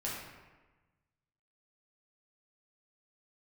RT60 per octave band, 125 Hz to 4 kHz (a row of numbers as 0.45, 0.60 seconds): 1.7, 1.4, 1.2, 1.2, 1.2, 0.80 seconds